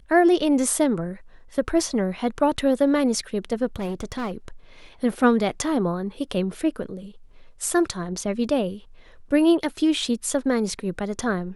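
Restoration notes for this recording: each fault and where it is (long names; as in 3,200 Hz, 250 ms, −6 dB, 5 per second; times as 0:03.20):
0:03.66–0:04.32: clipping −24.5 dBFS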